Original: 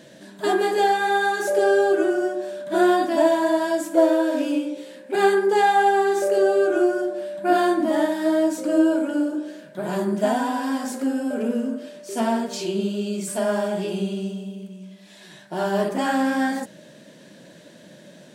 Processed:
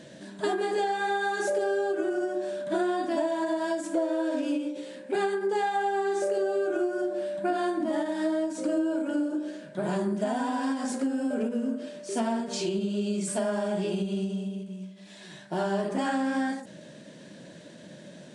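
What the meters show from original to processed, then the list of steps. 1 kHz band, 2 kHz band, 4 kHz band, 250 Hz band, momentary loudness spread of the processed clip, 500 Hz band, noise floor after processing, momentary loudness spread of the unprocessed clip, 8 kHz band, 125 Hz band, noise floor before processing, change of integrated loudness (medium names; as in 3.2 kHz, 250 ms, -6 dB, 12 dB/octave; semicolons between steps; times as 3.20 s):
-8.5 dB, -8.0 dB, -6.5 dB, -6.0 dB, 16 LU, -7.5 dB, -48 dBFS, 12 LU, -4.5 dB, -2.5 dB, -47 dBFS, -7.5 dB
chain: bass shelf 220 Hz +4.5 dB; compression, threshold -23 dBFS, peak gain reduction 11.5 dB; resampled via 22.05 kHz; endings held to a fixed fall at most 110 dB/s; trim -1.5 dB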